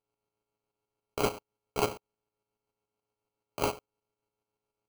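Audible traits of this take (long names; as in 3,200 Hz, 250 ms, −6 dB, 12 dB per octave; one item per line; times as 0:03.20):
a buzz of ramps at a fixed pitch in blocks of 32 samples
tremolo saw up 7 Hz, depth 55%
aliases and images of a low sample rate 1,800 Hz, jitter 0%
Ogg Vorbis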